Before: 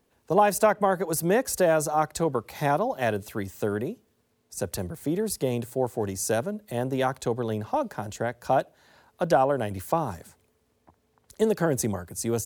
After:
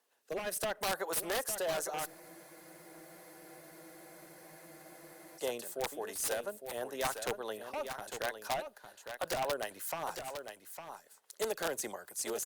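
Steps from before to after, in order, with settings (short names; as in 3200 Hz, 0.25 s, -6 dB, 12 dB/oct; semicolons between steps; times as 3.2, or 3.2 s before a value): HPF 730 Hz 12 dB/oct; high shelf 11000 Hz +5.5 dB; notch 2300 Hz, Q 14; limiter -19.5 dBFS, peak gain reduction 8 dB; wavefolder -24 dBFS; rotary speaker horn 0.7 Hz, later 5 Hz, at 2.67; wrapped overs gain 25.5 dB; on a send: echo 0.856 s -8.5 dB; on the sum: spectral freeze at 2.08, 3.30 s; Opus 48 kbps 48000 Hz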